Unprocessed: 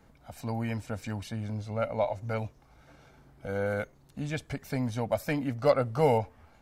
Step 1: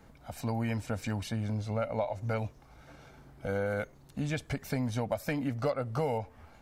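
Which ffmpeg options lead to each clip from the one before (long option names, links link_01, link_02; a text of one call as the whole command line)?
ffmpeg -i in.wav -af "acompressor=threshold=-31dB:ratio=6,volume=3dB" out.wav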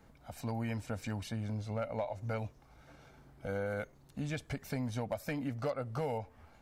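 ffmpeg -i in.wav -af "asoftclip=type=hard:threshold=-23dB,volume=-4.5dB" out.wav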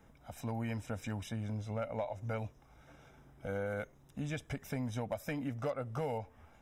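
ffmpeg -i in.wav -af "asuperstop=centerf=4400:order=8:qfactor=5.6,volume=-1dB" out.wav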